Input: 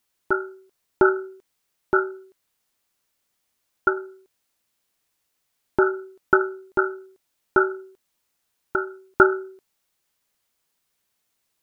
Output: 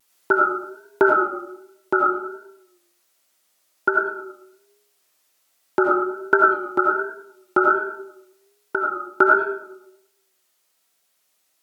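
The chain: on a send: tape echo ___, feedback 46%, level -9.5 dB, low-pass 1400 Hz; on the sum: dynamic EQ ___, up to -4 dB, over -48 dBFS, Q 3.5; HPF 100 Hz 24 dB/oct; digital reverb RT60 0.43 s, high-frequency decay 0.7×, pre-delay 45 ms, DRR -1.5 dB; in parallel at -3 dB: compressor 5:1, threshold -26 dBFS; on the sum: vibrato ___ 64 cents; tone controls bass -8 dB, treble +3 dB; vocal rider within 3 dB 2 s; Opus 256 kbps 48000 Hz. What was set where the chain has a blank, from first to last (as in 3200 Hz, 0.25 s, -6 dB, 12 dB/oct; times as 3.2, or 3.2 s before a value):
0.108 s, 160 Hz, 1.3 Hz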